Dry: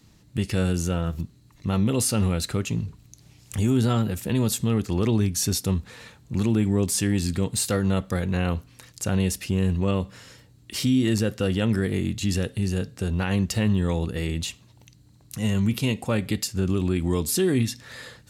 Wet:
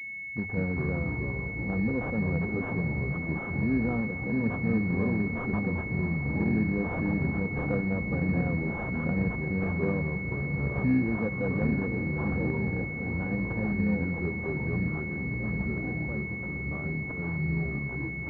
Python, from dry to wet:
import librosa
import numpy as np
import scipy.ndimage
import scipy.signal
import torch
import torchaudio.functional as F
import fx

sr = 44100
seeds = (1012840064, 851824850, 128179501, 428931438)

p1 = fx.fade_out_tail(x, sr, length_s=5.93)
p2 = scipy.signal.sosfilt(scipy.signal.butter(4, 67.0, 'highpass', fs=sr, output='sos'), p1)
p3 = fx.hum_notches(p2, sr, base_hz=50, count=2)
p4 = p3 + 0.39 * np.pad(p3, (int(4.1 * sr / 1000.0), 0))[:len(p3)]
p5 = p4 + fx.echo_diffused(p4, sr, ms=717, feedback_pct=70, wet_db=-10, dry=0)
p6 = fx.echo_pitch(p5, sr, ms=83, semitones=-4, count=2, db_per_echo=-3.0)
p7 = fx.pwm(p6, sr, carrier_hz=2200.0)
y = p7 * librosa.db_to_amplitude(-7.0)